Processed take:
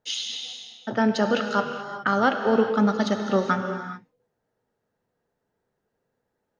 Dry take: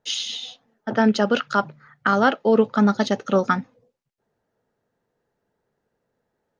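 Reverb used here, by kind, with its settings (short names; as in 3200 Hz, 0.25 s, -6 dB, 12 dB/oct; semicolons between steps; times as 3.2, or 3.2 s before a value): non-linear reverb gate 0.45 s flat, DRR 5 dB; gain -3.5 dB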